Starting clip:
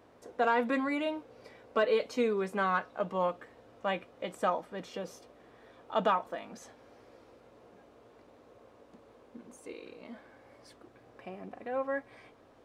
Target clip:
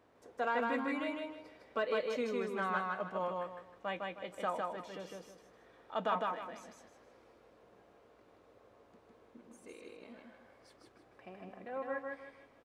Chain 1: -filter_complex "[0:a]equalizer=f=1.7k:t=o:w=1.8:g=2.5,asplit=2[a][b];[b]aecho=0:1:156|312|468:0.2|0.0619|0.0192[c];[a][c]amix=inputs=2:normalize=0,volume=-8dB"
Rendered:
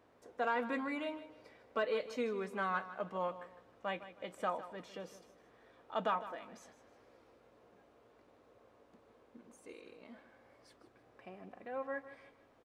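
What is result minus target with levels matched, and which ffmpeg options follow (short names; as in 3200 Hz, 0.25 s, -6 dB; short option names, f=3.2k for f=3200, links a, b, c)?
echo-to-direct -11.5 dB
-filter_complex "[0:a]equalizer=f=1.7k:t=o:w=1.8:g=2.5,asplit=2[a][b];[b]aecho=0:1:156|312|468|624:0.75|0.232|0.0721|0.0223[c];[a][c]amix=inputs=2:normalize=0,volume=-8dB"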